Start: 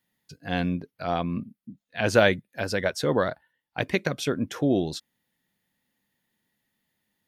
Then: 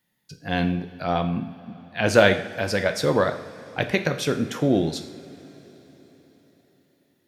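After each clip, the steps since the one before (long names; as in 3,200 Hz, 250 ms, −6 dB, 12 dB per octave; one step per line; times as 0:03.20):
coupled-rooms reverb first 0.6 s, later 4.6 s, from −17 dB, DRR 6.5 dB
level +2.5 dB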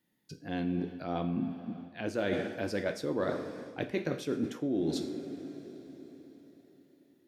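parametric band 310 Hz +12 dB 1.1 octaves
reversed playback
downward compressor 8 to 1, threshold −22 dBFS, peak gain reduction 16.5 dB
reversed playback
level −6.5 dB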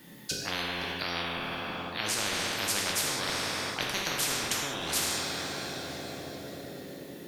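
reverb whose tail is shaped and stops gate 230 ms falling, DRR 1.5 dB
every bin compressed towards the loudest bin 10 to 1
level +3.5 dB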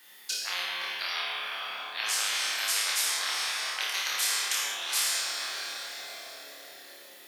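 high-pass filter 1,100 Hz 12 dB per octave
on a send: flutter between parallel walls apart 4.8 metres, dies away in 0.49 s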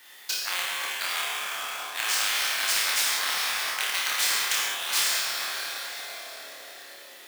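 each half-wave held at its own peak
high-pass filter 560 Hz 6 dB per octave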